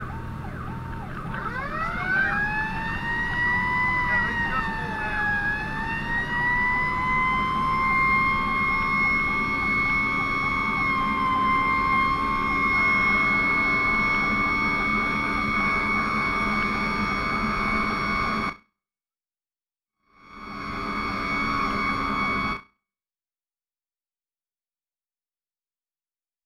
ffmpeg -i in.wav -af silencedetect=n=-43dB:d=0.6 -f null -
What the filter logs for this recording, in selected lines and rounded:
silence_start: 18.56
silence_end: 20.23 | silence_duration: 1.67
silence_start: 22.63
silence_end: 26.45 | silence_duration: 3.82